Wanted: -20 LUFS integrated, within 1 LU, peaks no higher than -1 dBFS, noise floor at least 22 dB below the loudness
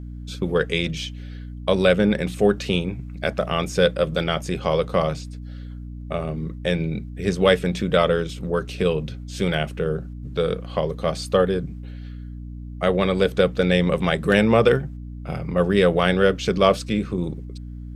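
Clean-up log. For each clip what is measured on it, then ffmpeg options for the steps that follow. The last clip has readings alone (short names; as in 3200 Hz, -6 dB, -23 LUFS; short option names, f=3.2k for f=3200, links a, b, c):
hum 60 Hz; harmonics up to 300 Hz; hum level -32 dBFS; loudness -22.0 LUFS; peak -2.0 dBFS; loudness target -20.0 LUFS
-> -af "bandreject=f=60:t=h:w=6,bandreject=f=120:t=h:w=6,bandreject=f=180:t=h:w=6,bandreject=f=240:t=h:w=6,bandreject=f=300:t=h:w=6"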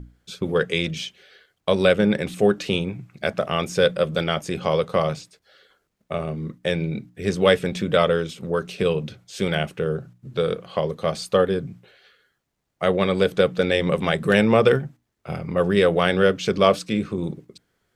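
hum none; loudness -22.5 LUFS; peak -2.0 dBFS; loudness target -20.0 LUFS
-> -af "volume=2.5dB,alimiter=limit=-1dB:level=0:latency=1"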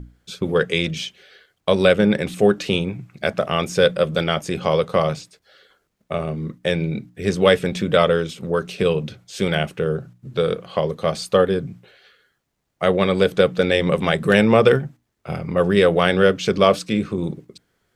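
loudness -20.0 LUFS; peak -1.0 dBFS; noise floor -71 dBFS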